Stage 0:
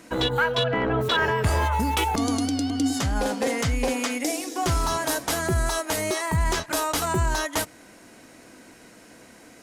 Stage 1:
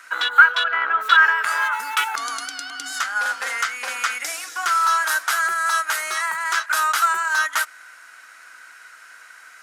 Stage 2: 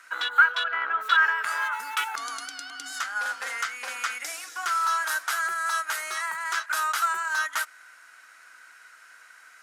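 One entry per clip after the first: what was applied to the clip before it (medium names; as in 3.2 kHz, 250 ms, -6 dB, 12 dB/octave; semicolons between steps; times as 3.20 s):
resonant high-pass 1.4 kHz, resonance Q 5.6; trim +1 dB
trim -6.5 dB; MP3 256 kbps 48 kHz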